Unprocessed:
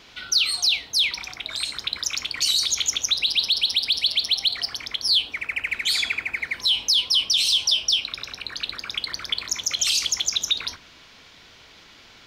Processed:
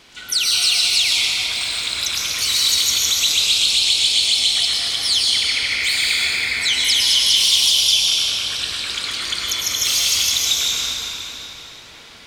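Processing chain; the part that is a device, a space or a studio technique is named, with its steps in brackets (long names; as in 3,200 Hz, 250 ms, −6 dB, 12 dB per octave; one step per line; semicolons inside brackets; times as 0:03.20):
shimmer-style reverb (pitch-shifted copies added +12 semitones −10 dB; convolution reverb RT60 3.7 s, pre-delay 97 ms, DRR −5.5 dB)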